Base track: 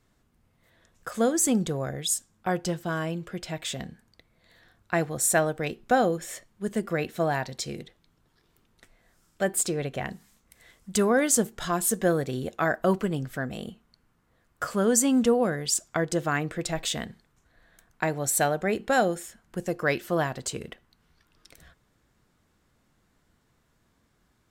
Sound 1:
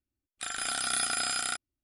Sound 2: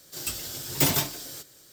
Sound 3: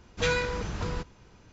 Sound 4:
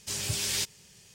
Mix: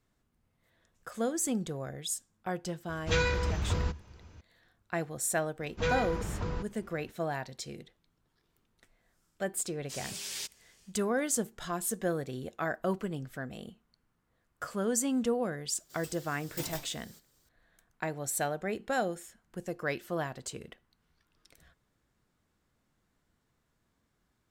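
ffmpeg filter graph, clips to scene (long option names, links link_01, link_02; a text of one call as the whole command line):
ffmpeg -i bed.wav -i cue0.wav -i cue1.wav -i cue2.wav -i cue3.wav -filter_complex "[3:a]asplit=2[link_01][link_02];[0:a]volume=-8dB[link_03];[link_01]equalizer=frequency=76:width=3.1:gain=14[link_04];[link_02]highshelf=frequency=2100:gain=-8.5[link_05];[4:a]highpass=frequency=450:poles=1[link_06];[link_04]atrim=end=1.52,asetpts=PTS-STARTPTS,volume=-2dB,afade=type=in:duration=0.004:curve=hsin,afade=type=out:start_time=1.516:duration=0.004:curve=hsin,adelay=2890[link_07];[link_05]atrim=end=1.52,asetpts=PTS-STARTPTS,volume=-2dB,afade=type=in:duration=0.004:curve=hsin,afade=type=out:start_time=1.516:duration=0.004:curve=hsin,adelay=5600[link_08];[link_06]atrim=end=1.14,asetpts=PTS-STARTPTS,volume=-8.5dB,afade=type=in:duration=0.1,afade=type=out:start_time=1.04:duration=0.1,adelay=9820[link_09];[2:a]atrim=end=1.72,asetpts=PTS-STARTPTS,volume=-17dB,afade=type=in:duration=0.004:curve=hsin,afade=type=out:start_time=1.716:duration=0.004:curve=hsin,adelay=15770[link_10];[link_03][link_07][link_08][link_09][link_10]amix=inputs=5:normalize=0" out.wav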